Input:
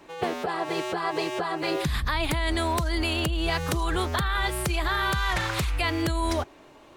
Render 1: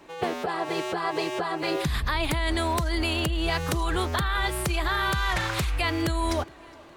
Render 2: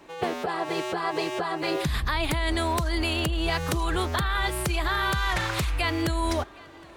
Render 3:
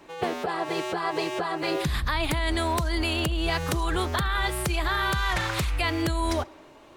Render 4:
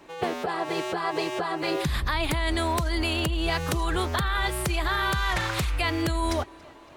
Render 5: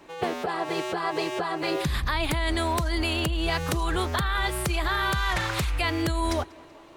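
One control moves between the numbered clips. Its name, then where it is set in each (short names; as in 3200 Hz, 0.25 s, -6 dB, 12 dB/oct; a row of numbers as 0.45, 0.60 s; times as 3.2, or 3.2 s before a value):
tape echo, time: 413, 765, 66, 279, 188 ms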